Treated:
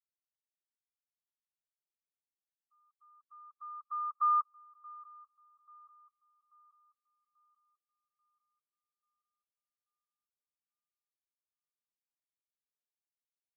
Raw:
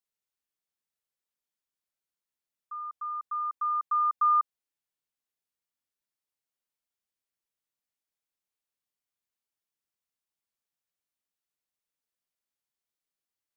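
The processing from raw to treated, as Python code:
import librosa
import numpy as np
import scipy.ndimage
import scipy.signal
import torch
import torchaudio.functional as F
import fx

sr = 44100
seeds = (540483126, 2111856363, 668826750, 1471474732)

p1 = fx.bin_expand(x, sr, power=3.0)
p2 = scipy.signal.sosfilt(scipy.signal.butter(2, 1100.0, 'lowpass', fs=sr, output='sos'), p1)
y = p2 + fx.echo_swing(p2, sr, ms=837, ratio=3, feedback_pct=40, wet_db=-22.5, dry=0)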